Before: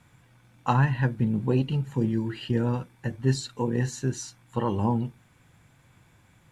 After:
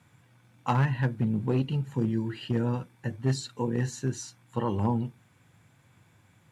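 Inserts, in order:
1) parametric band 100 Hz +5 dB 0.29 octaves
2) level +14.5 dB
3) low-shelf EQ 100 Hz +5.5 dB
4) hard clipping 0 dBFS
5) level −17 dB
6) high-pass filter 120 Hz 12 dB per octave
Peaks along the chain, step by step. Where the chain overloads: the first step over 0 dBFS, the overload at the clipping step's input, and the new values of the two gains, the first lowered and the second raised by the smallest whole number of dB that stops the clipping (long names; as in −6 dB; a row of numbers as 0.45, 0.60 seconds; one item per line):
−9.5, +5.0, +5.0, 0.0, −17.0, −12.0 dBFS
step 2, 5.0 dB
step 2 +9.5 dB, step 5 −12 dB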